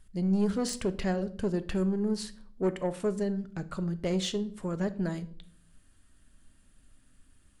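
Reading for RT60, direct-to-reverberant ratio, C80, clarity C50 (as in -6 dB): 0.55 s, 11.5 dB, 21.5 dB, 17.0 dB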